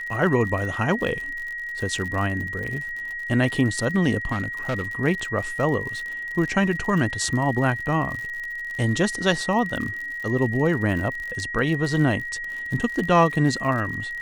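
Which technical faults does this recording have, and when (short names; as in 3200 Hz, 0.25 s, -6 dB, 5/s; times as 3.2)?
crackle 63/s -30 dBFS
tone 1900 Hz -29 dBFS
4.31–4.83 clipped -20.5 dBFS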